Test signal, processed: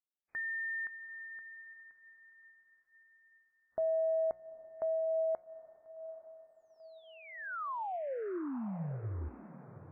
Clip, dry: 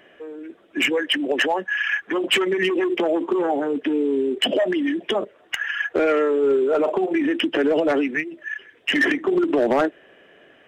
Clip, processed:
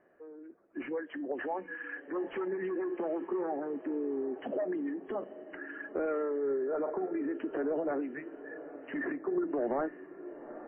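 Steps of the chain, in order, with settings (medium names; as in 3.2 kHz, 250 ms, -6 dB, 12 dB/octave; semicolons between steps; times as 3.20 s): low-pass 1.5 kHz 24 dB/octave; hum notches 60/120/180 Hz; feedback comb 180 Hz, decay 0.38 s, harmonics all, mix 40%; echo that smears into a reverb 835 ms, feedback 45%, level -14 dB; trim -9 dB; WMA 32 kbps 22.05 kHz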